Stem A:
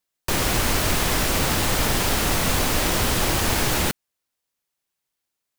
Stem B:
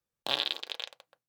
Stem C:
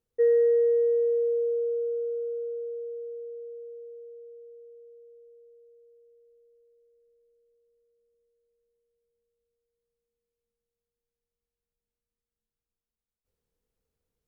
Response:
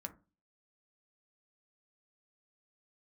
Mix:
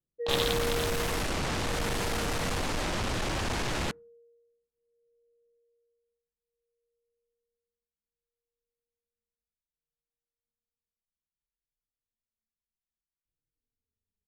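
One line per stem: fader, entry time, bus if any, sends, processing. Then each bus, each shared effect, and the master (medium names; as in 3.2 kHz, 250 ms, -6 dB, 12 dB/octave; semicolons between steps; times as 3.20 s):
-4.0 dB, 0.00 s, send -20 dB, treble shelf 4.3 kHz -6.5 dB; hard clipper -24.5 dBFS, distortion -8 dB
-1.5 dB, 0.00 s, no send, none
-4.5 dB, 0.00 s, no send, high-order bell 820 Hz -10 dB; endless flanger 3.3 ms -0.61 Hz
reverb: on, RT60 0.30 s, pre-delay 3 ms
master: level-controlled noise filter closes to 350 Hz, open at -26.5 dBFS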